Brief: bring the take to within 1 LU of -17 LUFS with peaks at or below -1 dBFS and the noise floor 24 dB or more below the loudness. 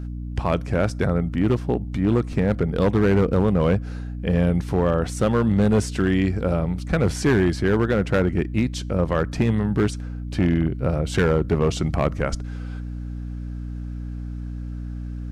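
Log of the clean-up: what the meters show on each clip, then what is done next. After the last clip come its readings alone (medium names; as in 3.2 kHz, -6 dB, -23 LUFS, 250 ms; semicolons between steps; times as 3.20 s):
clipped samples 1.4%; clipping level -12.5 dBFS; hum 60 Hz; highest harmonic 300 Hz; hum level -28 dBFS; loudness -22.0 LUFS; peak level -12.5 dBFS; loudness target -17.0 LUFS
-> clip repair -12.5 dBFS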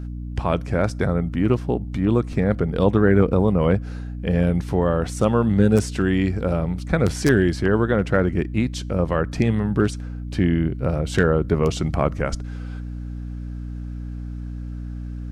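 clipped samples 0.0%; hum 60 Hz; highest harmonic 300 Hz; hum level -28 dBFS
-> hum notches 60/120/180/240/300 Hz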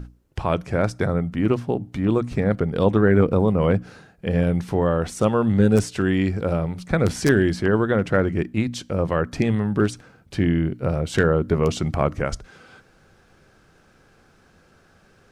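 hum not found; loudness -22.0 LUFS; peak level -4.5 dBFS; loudness target -17.0 LUFS
-> trim +5 dB; peak limiter -1 dBFS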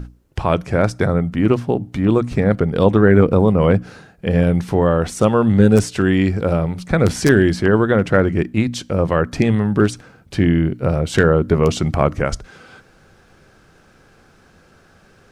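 loudness -17.0 LUFS; peak level -1.0 dBFS; noise floor -52 dBFS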